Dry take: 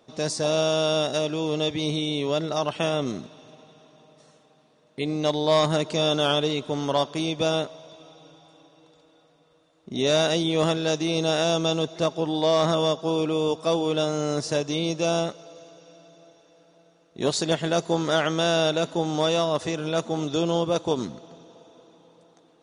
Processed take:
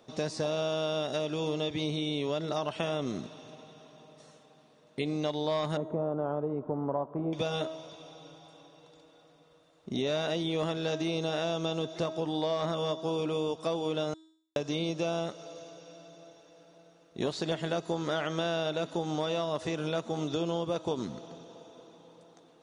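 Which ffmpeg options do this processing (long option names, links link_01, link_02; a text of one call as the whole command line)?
ffmpeg -i in.wav -filter_complex "[0:a]asettb=1/sr,asplit=3[link_01][link_02][link_03];[link_01]atrim=end=5.774[link_04];[link_02]atrim=start=5.77:end=7.33,asetpts=PTS-STARTPTS,afade=type=in:duration=0.004:curve=qsin,afade=type=out:start_time=1.556:duration=0.004:curve=qsin,lowpass=frequency=1100:width=0.5412,lowpass=frequency=1100:width=1.3066[link_05];[link_03]atrim=start=7.326[link_06];[link_04][link_05]acrossfade=duration=0.004:curve1=hsin:curve2=qsin[link_07];[link_07][link_06]acrossfade=duration=0.004:curve1=qsin:curve2=hsin,asplit=3[link_08][link_09][link_10];[link_08]atrim=end=14.14,asetpts=PTS-STARTPTS,afade=type=out:start_time=14.136:duration=0.004:curve=hsin[link_11];[link_09]atrim=start=14.14:end=14.56,asetpts=PTS-STARTPTS,volume=0[link_12];[link_10]atrim=start=14.56,asetpts=PTS-STARTPTS,afade=type=in:duration=0.004:curve=hsin[link_13];[link_11][link_12][link_13]concat=n=3:v=0:a=1,acrossover=split=4200[link_14][link_15];[link_15]acompressor=threshold=-43dB:ratio=4:attack=1:release=60[link_16];[link_14][link_16]amix=inputs=2:normalize=0,bandreject=frequency=319.1:width_type=h:width=4,bandreject=frequency=638.2:width_type=h:width=4,bandreject=frequency=957.3:width_type=h:width=4,bandreject=frequency=1276.4:width_type=h:width=4,bandreject=frequency=1595.5:width_type=h:width=4,bandreject=frequency=1914.6:width_type=h:width=4,bandreject=frequency=2233.7:width_type=h:width=4,bandreject=frequency=2552.8:width_type=h:width=4,bandreject=frequency=2871.9:width_type=h:width=4,bandreject=frequency=3191:width_type=h:width=4,bandreject=frequency=3510.1:width_type=h:width=4,bandreject=frequency=3829.2:width_type=h:width=4,bandreject=frequency=4148.3:width_type=h:width=4,bandreject=frequency=4467.4:width_type=h:width=4,bandreject=frequency=4786.5:width_type=h:width=4,bandreject=frequency=5105.6:width_type=h:width=4,bandreject=frequency=5424.7:width_type=h:width=4,bandreject=frequency=5743.8:width_type=h:width=4,bandreject=frequency=6062.9:width_type=h:width=4,bandreject=frequency=6382:width_type=h:width=4,bandreject=frequency=6701.1:width_type=h:width=4,bandreject=frequency=7020.2:width_type=h:width=4,bandreject=frequency=7339.3:width_type=h:width=4,bandreject=frequency=7658.4:width_type=h:width=4,bandreject=frequency=7977.5:width_type=h:width=4,bandreject=frequency=8296.6:width_type=h:width=4,bandreject=frequency=8615.7:width_type=h:width=4,bandreject=frequency=8934.8:width_type=h:width=4,bandreject=frequency=9253.9:width_type=h:width=4,bandreject=frequency=9573:width_type=h:width=4,bandreject=frequency=9892.1:width_type=h:width=4,bandreject=frequency=10211.2:width_type=h:width=4,bandreject=frequency=10530.3:width_type=h:width=4,bandreject=frequency=10849.4:width_type=h:width=4,acompressor=threshold=-29dB:ratio=4" out.wav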